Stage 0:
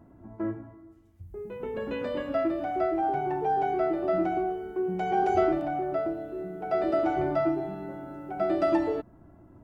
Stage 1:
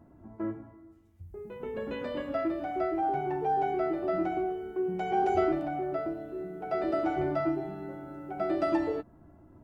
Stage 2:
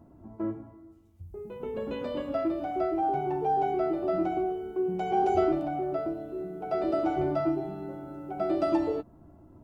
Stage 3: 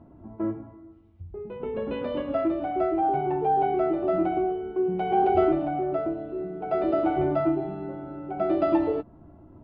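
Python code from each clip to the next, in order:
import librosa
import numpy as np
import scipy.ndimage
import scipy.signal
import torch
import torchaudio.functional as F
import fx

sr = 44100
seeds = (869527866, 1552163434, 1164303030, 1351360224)

y1 = fx.doubler(x, sr, ms=13.0, db=-11.0)
y1 = F.gain(torch.from_numpy(y1), -2.5).numpy()
y2 = fx.peak_eq(y1, sr, hz=1800.0, db=-9.0, octaves=0.6)
y2 = F.gain(torch.from_numpy(y2), 2.0).numpy()
y3 = scipy.signal.sosfilt(scipy.signal.butter(4, 3400.0, 'lowpass', fs=sr, output='sos'), y2)
y3 = F.gain(torch.from_numpy(y3), 3.5).numpy()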